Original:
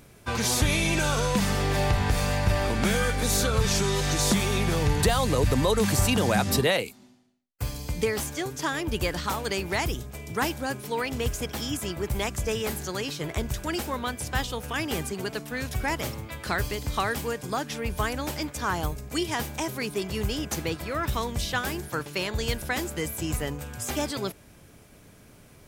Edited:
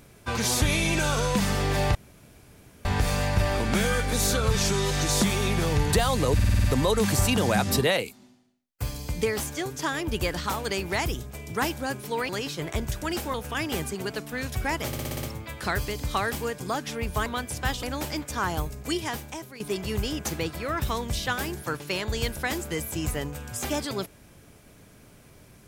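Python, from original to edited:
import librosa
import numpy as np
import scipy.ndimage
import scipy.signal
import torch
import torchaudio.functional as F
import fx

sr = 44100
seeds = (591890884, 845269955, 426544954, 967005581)

y = fx.edit(x, sr, fx.insert_room_tone(at_s=1.95, length_s=0.9),
    fx.stutter(start_s=5.44, slice_s=0.05, count=7),
    fx.cut(start_s=11.09, length_s=1.82),
    fx.move(start_s=13.96, length_s=0.57, to_s=18.09),
    fx.stutter(start_s=16.06, slice_s=0.06, count=7),
    fx.fade_out_to(start_s=19.16, length_s=0.7, floor_db=-15.5), tone=tone)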